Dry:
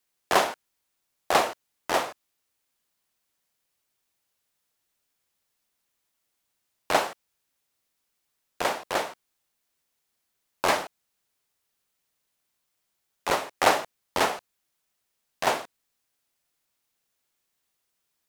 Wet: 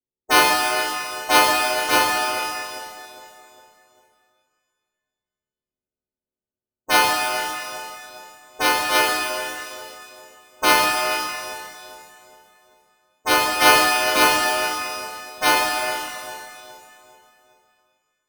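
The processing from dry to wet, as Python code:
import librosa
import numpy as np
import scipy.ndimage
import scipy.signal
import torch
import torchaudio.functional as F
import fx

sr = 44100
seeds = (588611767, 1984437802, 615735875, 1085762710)

p1 = fx.freq_snap(x, sr, grid_st=3)
p2 = fx.fuzz(p1, sr, gain_db=29.0, gate_db=-36.0)
p3 = p1 + (p2 * 10.0 ** (-10.0 / 20.0))
p4 = fx.env_lowpass(p3, sr, base_hz=350.0, full_db=-18.0)
p5 = p4 + fx.echo_feedback(p4, sr, ms=405, feedback_pct=48, wet_db=-11.5, dry=0)
p6 = fx.env_lowpass(p5, sr, base_hz=700.0, full_db=-16.0)
p7 = np.repeat(p6[::6], 6)[:len(p6)]
p8 = fx.rev_shimmer(p7, sr, seeds[0], rt60_s=1.9, semitones=12, shimmer_db=-8, drr_db=0.0)
y = p8 * 10.0 ** (-1.5 / 20.0)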